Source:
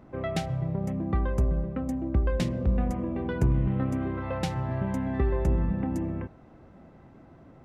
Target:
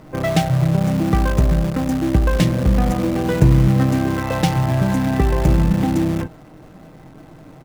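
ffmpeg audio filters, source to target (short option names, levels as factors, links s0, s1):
-filter_complex "[0:a]aecho=1:1:6.5:0.48,asplit=2[s0][s1];[s1]acrusher=bits=6:dc=4:mix=0:aa=0.000001,volume=0.631[s2];[s0][s2]amix=inputs=2:normalize=0,volume=2.11"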